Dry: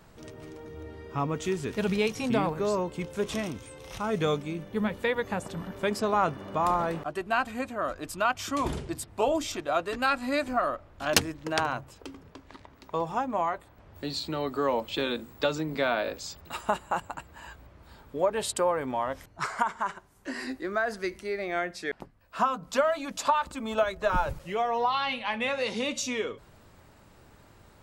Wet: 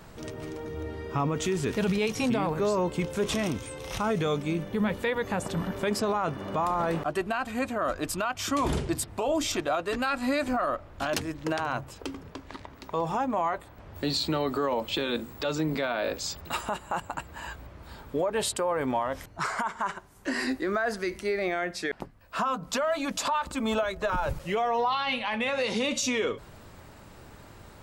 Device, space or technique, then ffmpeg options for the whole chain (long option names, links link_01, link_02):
stacked limiters: -af "alimiter=limit=-16dB:level=0:latency=1:release=193,alimiter=limit=-19.5dB:level=0:latency=1:release=444,alimiter=level_in=1.5dB:limit=-24dB:level=0:latency=1:release=29,volume=-1.5dB,volume=6.5dB"